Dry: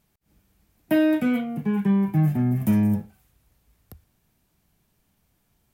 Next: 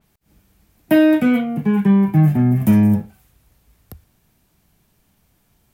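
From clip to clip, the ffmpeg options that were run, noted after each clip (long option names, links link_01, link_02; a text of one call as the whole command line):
ffmpeg -i in.wav -af "adynamicequalizer=threshold=0.00398:dfrequency=3800:dqfactor=0.7:tfrequency=3800:tqfactor=0.7:attack=5:release=100:ratio=0.375:range=2:mode=cutabove:tftype=highshelf,volume=7dB" out.wav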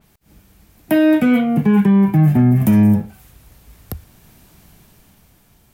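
ffmpeg -i in.wav -af "dynaudnorm=framelen=210:gausssize=11:maxgain=8dB,alimiter=limit=-13dB:level=0:latency=1:release=352,volume=7dB" out.wav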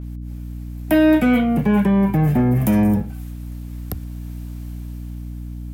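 ffmpeg -i in.wav -filter_complex "[0:a]acrossover=split=330|1400|3400[link_01][link_02][link_03][link_04];[link_01]asoftclip=type=tanh:threshold=-15dB[link_05];[link_05][link_02][link_03][link_04]amix=inputs=4:normalize=0,aeval=exprs='val(0)+0.0355*(sin(2*PI*60*n/s)+sin(2*PI*2*60*n/s)/2+sin(2*PI*3*60*n/s)/3+sin(2*PI*4*60*n/s)/4+sin(2*PI*5*60*n/s)/5)':channel_layout=same" out.wav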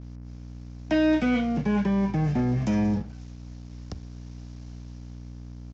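ffmpeg -i in.wav -af "aresample=16000,aeval=exprs='sgn(val(0))*max(abs(val(0))-0.00891,0)':channel_layout=same,aresample=44100,lowpass=frequency=5600:width_type=q:width=2.9,volume=-7.5dB" out.wav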